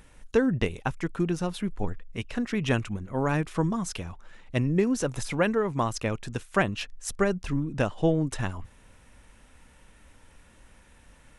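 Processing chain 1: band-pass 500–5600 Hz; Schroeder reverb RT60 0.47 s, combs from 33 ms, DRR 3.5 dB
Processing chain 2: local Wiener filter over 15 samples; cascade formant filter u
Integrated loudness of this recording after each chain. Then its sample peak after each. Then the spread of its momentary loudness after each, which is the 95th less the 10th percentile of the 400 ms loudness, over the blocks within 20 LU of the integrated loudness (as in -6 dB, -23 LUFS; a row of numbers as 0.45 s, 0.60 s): -32.0 LUFS, -37.0 LUFS; -9.0 dBFS, -21.0 dBFS; 12 LU, 13 LU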